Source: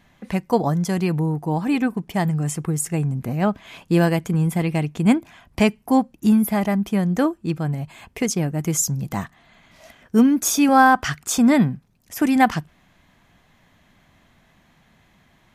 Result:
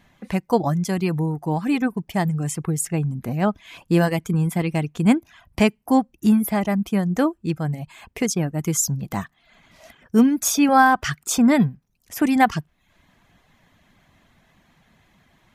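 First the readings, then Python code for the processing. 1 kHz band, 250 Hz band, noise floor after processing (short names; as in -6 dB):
-0.5 dB, -1.0 dB, -66 dBFS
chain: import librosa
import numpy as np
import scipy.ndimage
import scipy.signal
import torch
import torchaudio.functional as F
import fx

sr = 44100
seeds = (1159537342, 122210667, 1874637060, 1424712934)

y = fx.dereverb_blind(x, sr, rt60_s=0.51)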